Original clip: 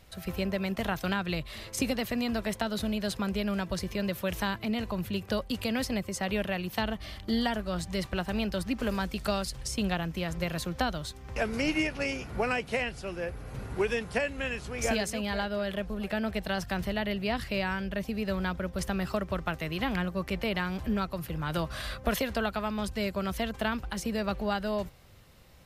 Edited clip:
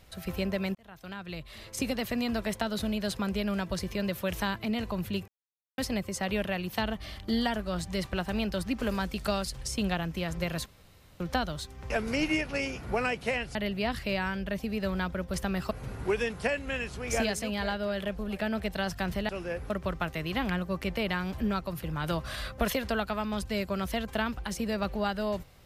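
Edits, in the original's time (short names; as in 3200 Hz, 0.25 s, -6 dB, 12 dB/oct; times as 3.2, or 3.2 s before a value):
0.75–2.11 fade in
5.28–5.78 mute
10.66 insert room tone 0.54 s
13.01–13.42 swap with 17–19.16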